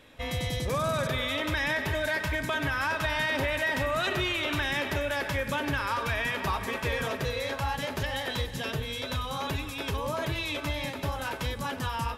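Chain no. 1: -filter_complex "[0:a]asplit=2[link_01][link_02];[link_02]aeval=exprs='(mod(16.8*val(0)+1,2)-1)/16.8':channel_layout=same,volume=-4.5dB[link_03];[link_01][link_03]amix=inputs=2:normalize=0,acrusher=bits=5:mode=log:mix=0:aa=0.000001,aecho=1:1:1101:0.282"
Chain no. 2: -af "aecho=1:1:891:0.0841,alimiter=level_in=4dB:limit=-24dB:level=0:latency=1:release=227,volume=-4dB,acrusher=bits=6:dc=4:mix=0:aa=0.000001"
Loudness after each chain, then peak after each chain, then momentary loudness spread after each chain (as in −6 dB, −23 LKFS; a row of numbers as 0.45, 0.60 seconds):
−26.5, −36.5 LKFS; −19.0, −24.0 dBFS; 4, 6 LU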